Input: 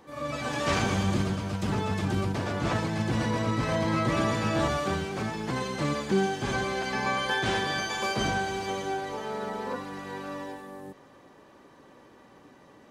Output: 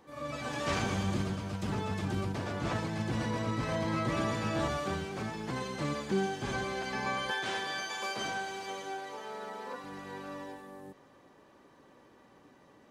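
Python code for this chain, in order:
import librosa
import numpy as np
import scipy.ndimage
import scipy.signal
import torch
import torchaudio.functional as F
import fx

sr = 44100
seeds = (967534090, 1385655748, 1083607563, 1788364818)

y = fx.highpass(x, sr, hz=500.0, slope=6, at=(7.31, 9.84))
y = F.gain(torch.from_numpy(y), -5.5).numpy()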